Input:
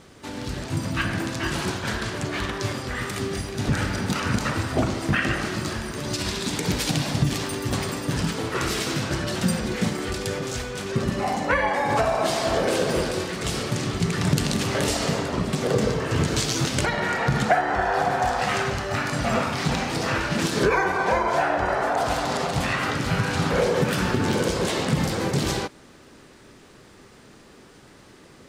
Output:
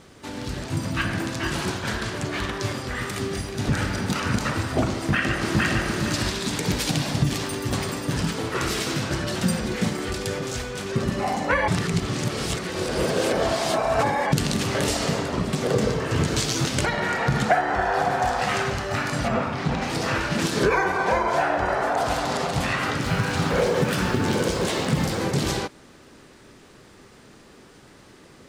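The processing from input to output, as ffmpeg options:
ffmpeg -i in.wav -filter_complex "[0:a]asplit=2[link_01][link_02];[link_02]afade=type=in:start_time=4.95:duration=0.01,afade=type=out:start_time=5.82:duration=0.01,aecho=0:1:460|920|1380|1840:0.944061|0.283218|0.0849655|0.0254896[link_03];[link_01][link_03]amix=inputs=2:normalize=0,asplit=3[link_04][link_05][link_06];[link_04]afade=type=out:start_time=19.27:duration=0.02[link_07];[link_05]lowpass=frequency=1800:poles=1,afade=type=in:start_time=19.27:duration=0.02,afade=type=out:start_time=19.81:duration=0.02[link_08];[link_06]afade=type=in:start_time=19.81:duration=0.02[link_09];[link_07][link_08][link_09]amix=inputs=3:normalize=0,asettb=1/sr,asplit=3[link_10][link_11][link_12];[link_10]atrim=end=23.024[link_13];[link_11]atrim=start=23.02:end=25.2,asetpts=PTS-STARTPTS,afade=type=in:duration=0.004:curve=qsin,afade=type=out:start_time=2.176:duration=0.004:curve=qsin,acrusher=bits=7:mix=0:aa=0.5[link_14];[link_12]atrim=start=25.196[link_15];[link_13][link_14]acrossfade=duration=0.004:curve1=hsin:curve2=qsin[link_16];[link_16][link_15]acrossfade=duration=0.004:curve1=qsin:curve2=hsin,asplit=3[link_17][link_18][link_19];[link_17]atrim=end=11.682[link_20];[link_18]atrim=start=11.678:end=14.322,asetpts=PTS-STARTPTS,areverse[link_21];[link_19]atrim=start=14.318[link_22];[link_20][link_21]acrossfade=duration=0.004:curve1=hsin:curve2=hsin[link_23];[link_23][link_22]acrossfade=duration=0.004:curve1=hsin:curve2=hsin" out.wav

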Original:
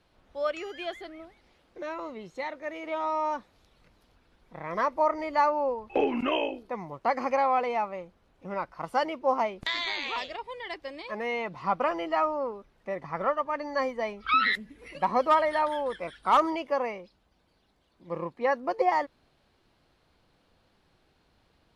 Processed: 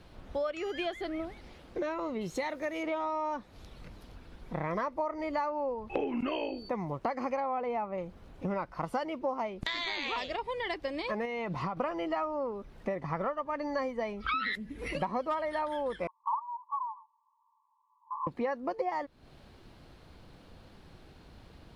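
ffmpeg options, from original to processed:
ffmpeg -i in.wav -filter_complex "[0:a]asettb=1/sr,asplit=3[link_01][link_02][link_03];[link_01]atrim=end=2.214[link_04];[link_02]atrim=start=2.21:end=2.83,asetpts=PTS-STARTPTS,afade=type=in:duration=0.004:curve=qsin,afade=type=out:start_time=0.616:duration=0.004:curve=qsin,aemphasis=mode=production:type=50kf[link_05];[link_03]atrim=start=2.826[link_06];[link_04][link_05]acrossfade=duration=0.004:curve1=hsin:curve2=qsin[link_07];[link_07][link_06]acrossfade=duration=0.004:curve1=qsin:curve2=hsin,asettb=1/sr,asplit=3[link_08][link_09][link_10];[link_08]atrim=end=6.274[link_11];[link_09]atrim=start=6.27:end=6.69,asetpts=PTS-STARTPTS,afade=type=in:duration=0.004:curve=qsin,afade=type=out:start_time=0.416:duration=0.004:curve=qsin,aeval=exprs='val(0)+0.00282*sin(2*PI*4500*n/s)':channel_layout=same[link_12];[link_10]atrim=start=6.686[link_13];[link_11][link_12]acrossfade=duration=0.004:curve1=hsin:curve2=qsin[link_14];[link_14][link_13]acrossfade=duration=0.004:curve1=qsin:curve2=hsin,asettb=1/sr,asplit=3[link_15][link_16][link_17];[link_15]atrim=end=7.404[link_18];[link_16]atrim=start=7.4:end=7.98,asetpts=PTS-STARTPTS,afade=type=in:duration=0.004:curve=qsin,afade=type=out:start_time=0.576:duration=0.004:curve=qsin,equalizer=frequency=7300:width=0.35:gain=-11[link_19];[link_17]atrim=start=7.976[link_20];[link_18][link_19]acrossfade=duration=0.004:curve1=hsin:curve2=qsin[link_21];[link_21][link_20]acrossfade=duration=0.004:curve1=qsin:curve2=hsin,asettb=1/sr,asplit=3[link_22][link_23][link_24];[link_22]atrim=end=11.254[link_25];[link_23]atrim=start=11.25:end=11.77,asetpts=PTS-STARTPTS,afade=type=in:duration=0.004:curve=qsin,afade=type=out:start_time=0.516:duration=0.004:curve=qsin,acompressor=threshold=-34dB:ratio=6:attack=3.2:release=140:knee=1:detection=peak[link_26];[link_24]atrim=start=11.766[link_27];[link_25][link_26]acrossfade=duration=0.004:curve1=hsin:curve2=qsin[link_28];[link_28][link_27]acrossfade=duration=0.004:curve1=qsin:curve2=hsin,asettb=1/sr,asplit=3[link_29][link_30][link_31];[link_29]atrim=end=16.074[link_32];[link_30]atrim=start=16.07:end=18.27,asetpts=PTS-STARTPTS,afade=type=in:duration=0.004:curve=qsin,afade=type=out:start_time=2.196:duration=0.004:curve=qsin,asuperpass=centerf=1000:order=20:qfactor=3.3[link_33];[link_31]atrim=start=18.266[link_34];[link_32][link_33]acrossfade=duration=0.004:curve1=hsin:curve2=qsin[link_35];[link_35][link_34]acrossfade=duration=0.004:curve1=qsin:curve2=hsin,lowshelf=frequency=360:gain=7.5,acompressor=threshold=-40dB:ratio=6,volume=8.5dB" out.wav

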